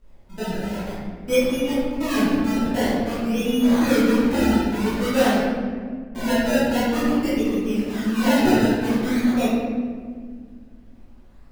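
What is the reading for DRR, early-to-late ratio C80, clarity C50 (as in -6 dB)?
-13.0 dB, 0.0 dB, -3.5 dB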